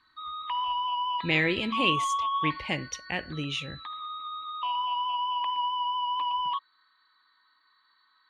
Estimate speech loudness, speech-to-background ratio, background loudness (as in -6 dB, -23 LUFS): -29.5 LUFS, 1.0 dB, -30.5 LUFS